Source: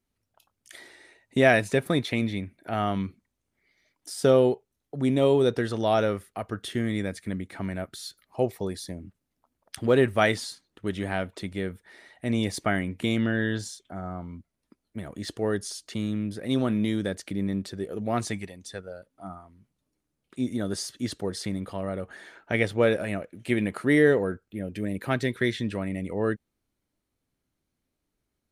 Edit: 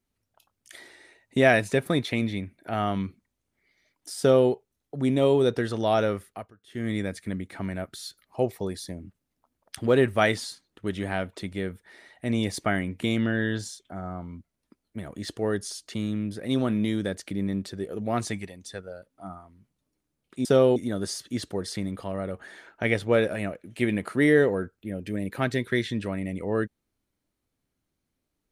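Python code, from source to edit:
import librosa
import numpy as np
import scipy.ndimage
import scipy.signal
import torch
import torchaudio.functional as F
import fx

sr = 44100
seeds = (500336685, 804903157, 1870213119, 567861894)

y = fx.edit(x, sr, fx.duplicate(start_s=4.19, length_s=0.31, to_s=20.45),
    fx.fade_down_up(start_s=6.29, length_s=0.61, db=-24.0, fade_s=0.24), tone=tone)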